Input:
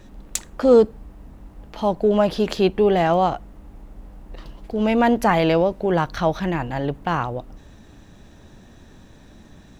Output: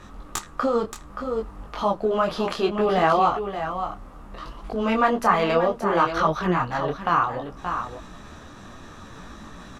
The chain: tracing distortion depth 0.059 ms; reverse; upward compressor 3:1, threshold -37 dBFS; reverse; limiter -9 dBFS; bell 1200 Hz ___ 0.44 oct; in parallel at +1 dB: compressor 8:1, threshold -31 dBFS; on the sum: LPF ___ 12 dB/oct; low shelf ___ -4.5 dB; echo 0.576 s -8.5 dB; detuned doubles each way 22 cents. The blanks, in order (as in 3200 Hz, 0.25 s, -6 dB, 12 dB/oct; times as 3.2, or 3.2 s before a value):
+13.5 dB, 12000 Hz, 360 Hz